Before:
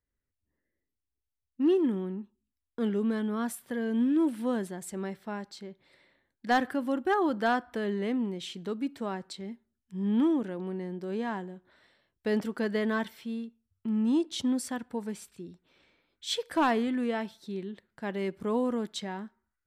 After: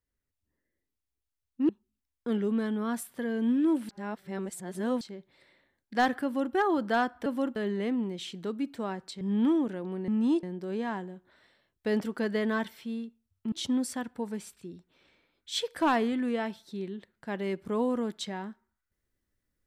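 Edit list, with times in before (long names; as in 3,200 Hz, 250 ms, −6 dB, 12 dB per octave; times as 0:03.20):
0:01.69–0:02.21: remove
0:04.41–0:05.53: reverse
0:06.76–0:07.06: duplicate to 0:07.78
0:09.43–0:09.96: remove
0:13.92–0:14.27: move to 0:10.83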